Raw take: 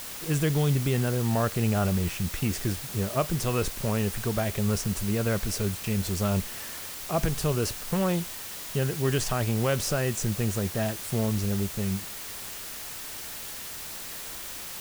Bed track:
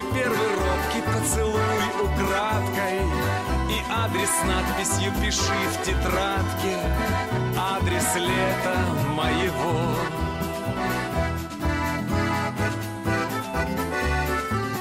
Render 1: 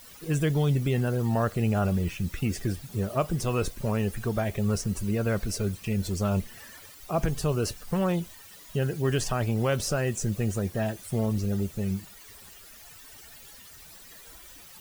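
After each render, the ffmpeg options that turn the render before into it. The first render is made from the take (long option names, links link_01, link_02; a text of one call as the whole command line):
ffmpeg -i in.wav -af "afftdn=noise_reduction=14:noise_floor=-39" out.wav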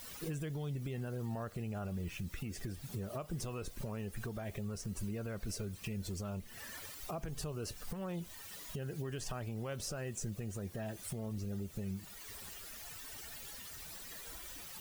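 ffmpeg -i in.wav -af "acompressor=threshold=-30dB:ratio=6,alimiter=level_in=7dB:limit=-24dB:level=0:latency=1:release=426,volume=-7dB" out.wav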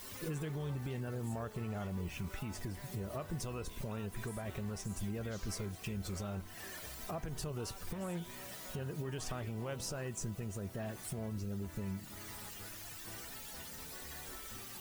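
ffmpeg -i in.wav -i bed.wav -filter_complex "[1:a]volume=-29.5dB[link_01];[0:a][link_01]amix=inputs=2:normalize=0" out.wav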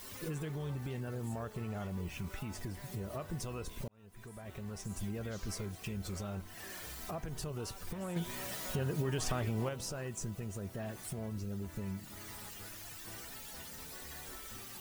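ffmpeg -i in.wav -filter_complex "[0:a]asettb=1/sr,asplit=3[link_01][link_02][link_03];[link_01]atrim=end=6.654[link_04];[link_02]atrim=start=6.65:end=7.1,asetpts=PTS-STARTPTS,afade=type=in:duration=0.004:curve=qsin,afade=type=out:start_time=0.446:duration=0.004:curve=qsin,asplit=2[link_05][link_06];[link_06]adelay=49,volume=-5dB[link_07];[link_05][link_07]amix=inputs=2:normalize=0,atrim=end_sample=19845[link_08];[link_03]atrim=start=7.096[link_09];[link_04][link_08]acrossfade=duration=0.004:curve1=hsin:curve2=qsin[link_10];[link_10][link_09]acrossfade=duration=0.004:curve1=qsin:curve2=hsin,asettb=1/sr,asplit=3[link_11][link_12][link_13];[link_11]atrim=end=8.164[link_14];[link_12]atrim=start=8.16:end=9.69,asetpts=PTS-STARTPTS,afade=type=in:duration=0.004:curve=qsin,afade=type=out:start_time=1.526:duration=0.004:curve=qsin,acontrast=52[link_15];[link_13]atrim=start=9.686[link_16];[link_14][link_15]acrossfade=duration=0.004:curve1=hsin:curve2=qsin[link_17];[link_17][link_16]acrossfade=duration=0.004:curve1=qsin:curve2=hsin,asplit=2[link_18][link_19];[link_18]atrim=end=3.88,asetpts=PTS-STARTPTS,afade=type=out:start_time=3.876:duration=0.004:curve=hsin[link_20];[link_19]atrim=start=3.88,asetpts=PTS-STARTPTS,afade=type=in:duration=1.1[link_21];[link_20][link_21]concat=n=2:v=0:a=1" out.wav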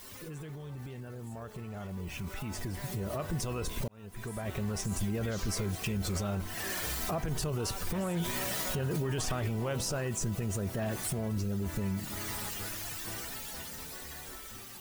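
ffmpeg -i in.wav -af "alimiter=level_in=11.5dB:limit=-24dB:level=0:latency=1:release=28,volume=-11.5dB,dynaudnorm=framelen=590:gausssize=9:maxgain=11dB" out.wav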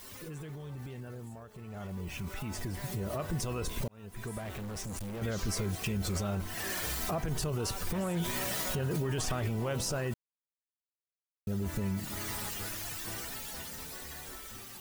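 ffmpeg -i in.wav -filter_complex "[0:a]asettb=1/sr,asplit=3[link_01][link_02][link_03];[link_01]atrim=end=4.384[link_04];[link_02]atrim=start=4.38:end=5.22,asetpts=PTS-STARTPTS,afade=type=in:duration=0.004:curve=qsin,afade=type=out:start_time=0.836:duration=0.004:curve=qsin,asoftclip=type=hard:threshold=-37dB[link_05];[link_03]atrim=start=5.216[link_06];[link_04][link_05]acrossfade=duration=0.004:curve1=hsin:curve2=qsin[link_07];[link_07][link_06]acrossfade=duration=0.004:curve1=qsin:curve2=hsin,asplit=4[link_08][link_09][link_10][link_11];[link_08]atrim=end=1.49,asetpts=PTS-STARTPTS,afade=type=out:start_time=1.14:duration=0.35:silence=0.398107[link_12];[link_09]atrim=start=1.49:end=10.14,asetpts=PTS-STARTPTS,afade=type=in:duration=0.35:silence=0.398107,afade=type=out:start_time=8.646:duration=0.004:curve=hsin[link_13];[link_10]atrim=start=10.14:end=11.47,asetpts=PTS-STARTPTS,volume=0[link_14];[link_11]atrim=start=11.47,asetpts=PTS-STARTPTS,afade=type=in:duration=0.004:curve=hsin[link_15];[link_12][link_13][link_14][link_15]concat=n=4:v=0:a=1" out.wav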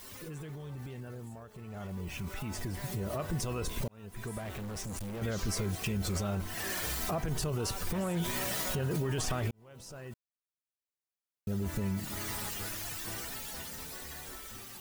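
ffmpeg -i in.wav -filter_complex "[0:a]asplit=2[link_01][link_02];[link_01]atrim=end=9.51,asetpts=PTS-STARTPTS,afade=type=out:start_time=9.506:duration=0.004:curve=hsin[link_03];[link_02]atrim=start=9.51,asetpts=PTS-STARTPTS,afade=type=in:duration=1.97[link_04];[link_03][link_04]concat=n=2:v=0:a=1" out.wav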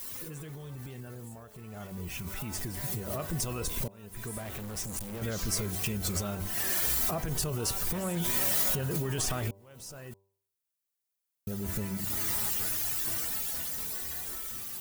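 ffmpeg -i in.wav -af "highshelf=frequency=7300:gain=11.5,bandreject=frequency=98.05:width_type=h:width=4,bandreject=frequency=196.1:width_type=h:width=4,bandreject=frequency=294.15:width_type=h:width=4,bandreject=frequency=392.2:width_type=h:width=4,bandreject=frequency=490.25:width_type=h:width=4,bandreject=frequency=588.3:width_type=h:width=4,bandreject=frequency=686.35:width_type=h:width=4,bandreject=frequency=784.4:width_type=h:width=4,bandreject=frequency=882.45:width_type=h:width=4,bandreject=frequency=980.5:width_type=h:width=4,bandreject=frequency=1078.55:width_type=h:width=4" out.wav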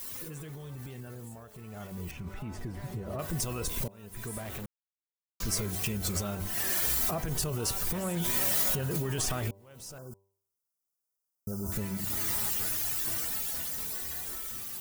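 ffmpeg -i in.wav -filter_complex "[0:a]asettb=1/sr,asplit=3[link_01][link_02][link_03];[link_01]atrim=end=2.114[link_04];[link_02]atrim=start=2.11:end=3.19,asetpts=PTS-STARTPTS,afade=type=in:duration=0.004:curve=qsin,afade=type=out:start_time=1.076:duration=0.004:curve=qsin,lowpass=frequency=1200:poles=1[link_05];[link_03]atrim=start=3.186[link_06];[link_04][link_05]acrossfade=duration=0.004:curve1=hsin:curve2=qsin[link_07];[link_07][link_06]acrossfade=duration=0.004:curve1=qsin:curve2=hsin,asettb=1/sr,asplit=3[link_08][link_09][link_10];[link_08]atrim=end=9.984[link_11];[link_09]atrim=start=9.98:end=11.72,asetpts=PTS-STARTPTS,afade=type=in:duration=0.004:curve=qsin,afade=type=out:start_time=1.736:duration=0.004:curve=qsin,asuperstop=centerf=2700:order=20:qfactor=0.83[link_12];[link_10]atrim=start=11.716[link_13];[link_11][link_12]acrossfade=duration=0.004:curve1=hsin:curve2=qsin[link_14];[link_14][link_13]acrossfade=duration=0.004:curve1=qsin:curve2=hsin,asplit=3[link_15][link_16][link_17];[link_15]atrim=end=4.66,asetpts=PTS-STARTPTS,afade=type=out:start_time=4.656:duration=0.004:curve=hsin[link_18];[link_16]atrim=start=4.66:end=5.4,asetpts=PTS-STARTPTS,volume=0[link_19];[link_17]atrim=start=5.4,asetpts=PTS-STARTPTS,afade=type=in:duration=0.004:curve=hsin[link_20];[link_18][link_19][link_20]concat=n=3:v=0:a=1" out.wav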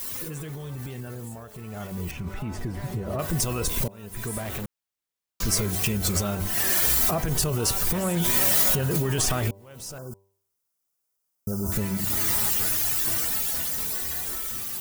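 ffmpeg -i in.wav -af "volume=7dB" out.wav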